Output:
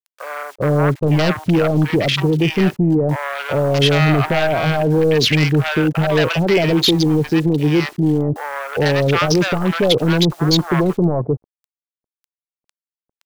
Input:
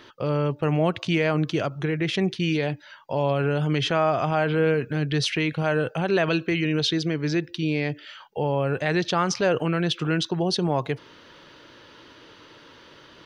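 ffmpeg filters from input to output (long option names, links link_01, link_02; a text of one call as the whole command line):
ffmpeg -i in.wav -filter_complex "[0:a]afwtdn=0.0251,asettb=1/sr,asplit=3[link_01][link_02][link_03];[link_01]atrim=end=0.434[link_04];[link_02]atrim=start=0.43:end=1.19,asetpts=PTS-STARTPTS,afade=type=in:duration=0.004:curve=qsin,afade=type=out:start_time=0.756:duration=0.004:curve=qsin,lowpass=1200[link_05];[link_03]atrim=start=1.186[link_06];[link_04][link_05]acrossfade=duration=0.004:curve1=hsin:curve2=qsin[link_07];[link_07][link_06]acrossfade=duration=0.004:curve1=qsin:curve2=hsin,aeval=exprs='0.335*sin(PI/2*2.51*val(0)/0.335)':channel_layout=same,aeval=exprs='0.355*(cos(1*acos(clip(val(0)/0.355,-1,1)))-cos(1*PI/2))+0.00891*(cos(2*acos(clip(val(0)/0.355,-1,1)))-cos(2*PI/2))':channel_layout=same,acrusher=bits=6:mix=0:aa=0.000001,acrossover=split=800[link_08][link_09];[link_08]adelay=400[link_10];[link_10][link_09]amix=inputs=2:normalize=0" out.wav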